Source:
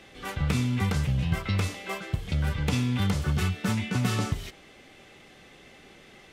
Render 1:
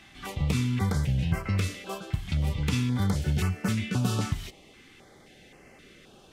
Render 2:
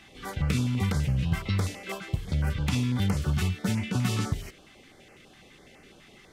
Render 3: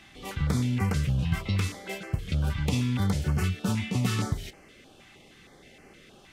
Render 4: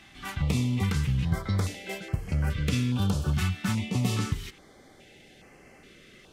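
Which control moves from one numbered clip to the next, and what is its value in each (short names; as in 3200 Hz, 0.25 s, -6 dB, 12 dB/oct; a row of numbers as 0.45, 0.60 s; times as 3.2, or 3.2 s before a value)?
stepped notch, rate: 3.8, 12, 6.4, 2.4 Hz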